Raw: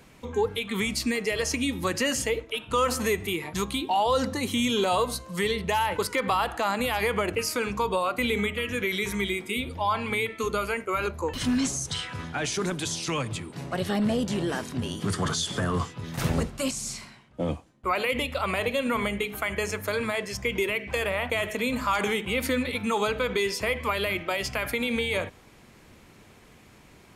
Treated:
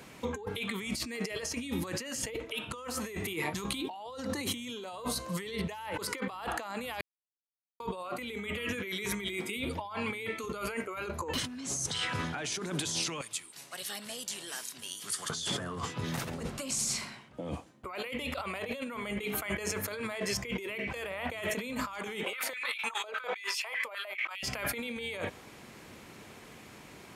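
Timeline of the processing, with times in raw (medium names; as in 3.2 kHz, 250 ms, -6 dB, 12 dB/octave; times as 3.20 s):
7.01–7.80 s: mute
13.21–15.30 s: pre-emphasis filter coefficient 0.97
22.23–24.43 s: step-sequenced high-pass 9.9 Hz 560–2700 Hz
whole clip: high-pass 160 Hz 6 dB/octave; compressor with a negative ratio -35 dBFS, ratio -1; trim -2 dB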